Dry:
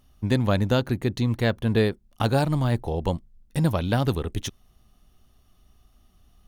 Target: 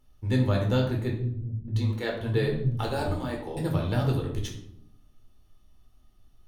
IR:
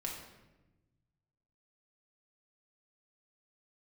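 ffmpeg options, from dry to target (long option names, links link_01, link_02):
-filter_complex "[0:a]asettb=1/sr,asplit=3[link_01][link_02][link_03];[link_01]atrim=end=1.094[link_04];[link_02]atrim=start=1.09:end=3.57,asetpts=PTS-STARTPTS,afade=type=in:duration=0.004:curve=qsin,afade=type=out:start_time=2.476:duration=0.004:curve=qsin,acrossover=split=200[link_05][link_06];[link_06]adelay=590[link_07];[link_05][link_07]amix=inputs=2:normalize=0,atrim=end_sample=109368[link_08];[link_03]atrim=start=3.566[link_09];[link_04][link_08]acrossfade=duration=0.004:curve1=hsin:curve2=qsin[link_10];[link_10][link_09]acrossfade=duration=0.004:curve1=qsin:curve2=hsin[link_11];[1:a]atrim=start_sample=2205,asetrate=83790,aresample=44100[link_12];[link_11][link_12]afir=irnorm=-1:irlink=0"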